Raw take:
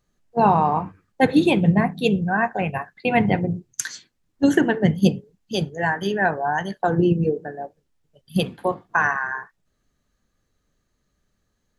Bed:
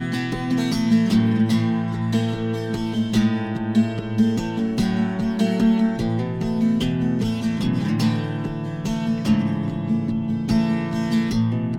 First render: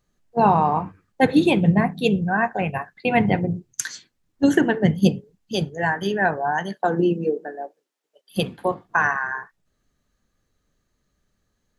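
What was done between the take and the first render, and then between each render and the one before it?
0:06.51–0:08.37: high-pass filter 140 Hz → 420 Hz 24 dB per octave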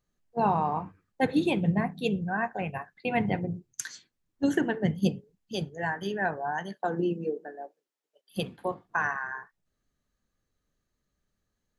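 level −8.5 dB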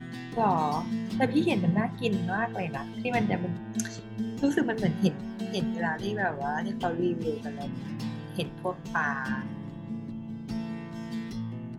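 mix in bed −14.5 dB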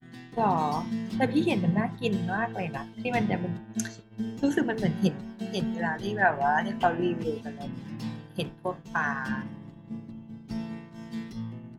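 0:06.22–0:07.23: gain on a spectral selection 560–3,100 Hz +7 dB
downward expander −32 dBFS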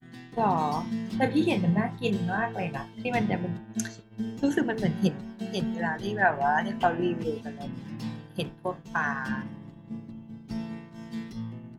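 0:01.20–0:03.03: double-tracking delay 29 ms −8.5 dB

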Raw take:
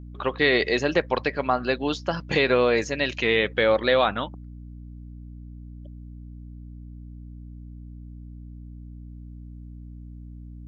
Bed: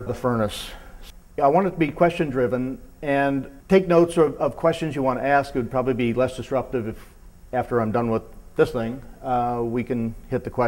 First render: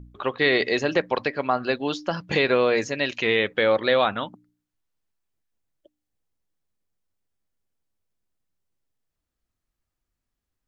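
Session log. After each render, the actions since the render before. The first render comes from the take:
hum removal 60 Hz, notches 5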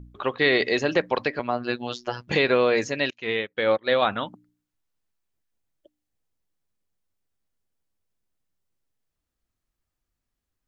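0:01.39–0:02.28: phases set to zero 121 Hz
0:03.10–0:04.02: expander for the loud parts 2.5 to 1, over −34 dBFS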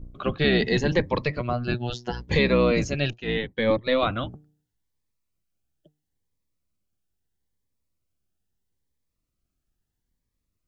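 sub-octave generator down 1 octave, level +4 dB
phaser whose notches keep moving one way rising 0.76 Hz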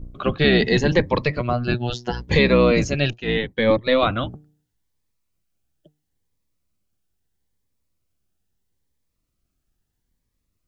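level +4.5 dB

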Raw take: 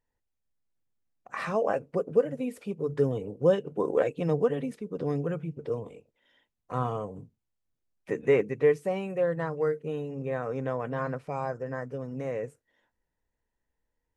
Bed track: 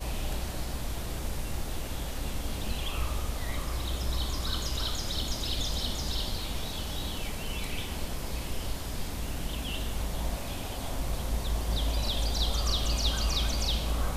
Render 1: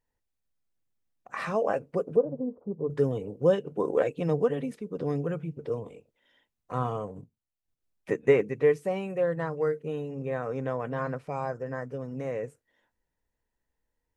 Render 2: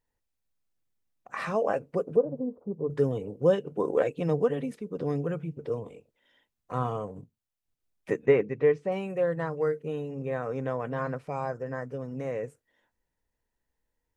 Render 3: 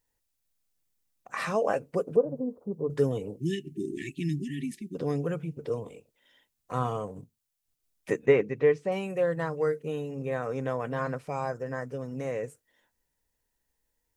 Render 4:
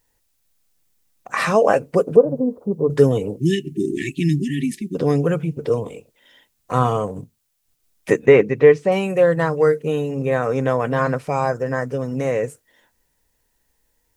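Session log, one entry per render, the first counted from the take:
0:02.16–0:02.90: Butterworth low-pass 1,100 Hz 48 dB per octave; 0:07.07–0:08.33: transient designer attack +3 dB, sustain −8 dB
0:08.26–0:08.92: high-frequency loss of the air 150 metres
high-shelf EQ 3,900 Hz +10 dB; 0:03.39–0:04.95: time-frequency box erased 400–1,700 Hz
level +11.5 dB; brickwall limiter −1 dBFS, peak gain reduction 3 dB

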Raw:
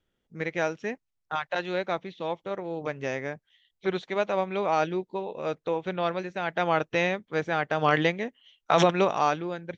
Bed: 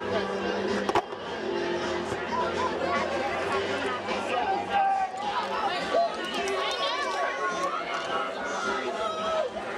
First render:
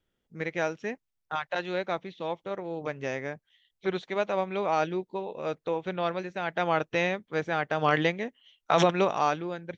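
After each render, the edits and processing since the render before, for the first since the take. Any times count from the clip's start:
level −1.5 dB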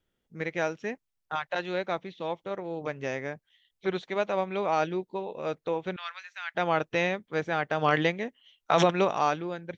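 0:05.96–0:06.55: high-pass filter 1,300 Hz 24 dB per octave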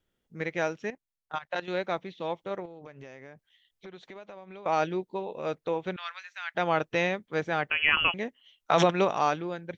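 0:00.90–0:01.68: output level in coarse steps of 15 dB
0:02.65–0:04.66: downward compressor 8 to 1, threshold −42 dBFS
0:07.70–0:08.14: voice inversion scrambler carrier 3,100 Hz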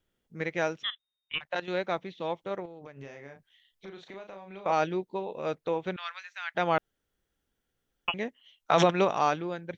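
0:00.83–0:01.41: voice inversion scrambler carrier 3,700 Hz
0:02.93–0:04.72: double-tracking delay 36 ms −5.5 dB
0:06.78–0:08.08: fill with room tone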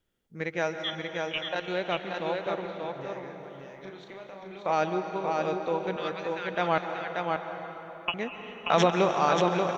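on a send: single-tap delay 583 ms −4 dB
on the sum: dense smooth reverb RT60 4.2 s, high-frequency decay 0.65×, pre-delay 120 ms, DRR 6.5 dB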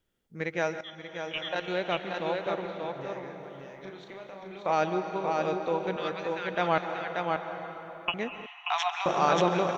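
0:00.81–0:01.58: fade in, from −14.5 dB
0:08.46–0:09.06: Chebyshev high-pass with heavy ripple 700 Hz, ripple 6 dB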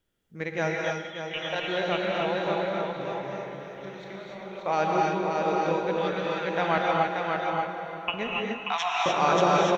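repeating echo 927 ms, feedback 51%, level −22 dB
reverb whose tail is shaped and stops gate 320 ms rising, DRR −1.5 dB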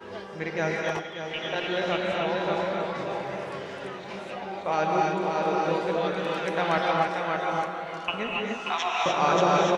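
mix in bed −10.5 dB

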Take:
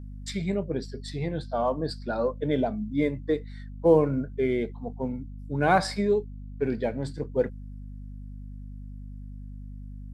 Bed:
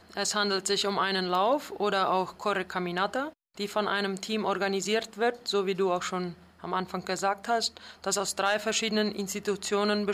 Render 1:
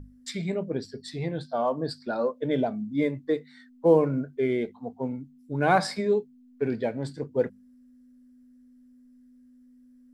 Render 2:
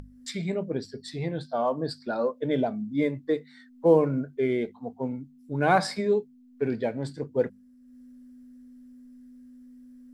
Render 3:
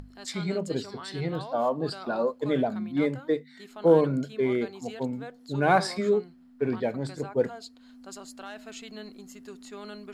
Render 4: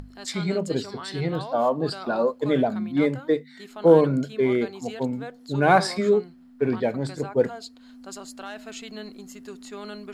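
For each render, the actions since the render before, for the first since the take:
mains-hum notches 50/100/150/200 Hz
upward compression, threshold −43 dBFS
mix in bed −15.5 dB
level +4 dB

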